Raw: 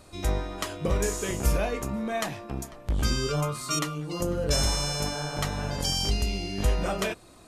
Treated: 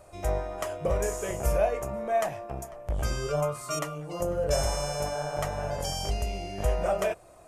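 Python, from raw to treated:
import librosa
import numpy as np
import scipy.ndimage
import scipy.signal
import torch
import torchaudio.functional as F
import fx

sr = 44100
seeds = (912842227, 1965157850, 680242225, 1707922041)

y = fx.graphic_eq_15(x, sr, hz=(250, 630, 4000), db=(-10, 11, -11))
y = y * librosa.db_to_amplitude(-3.0)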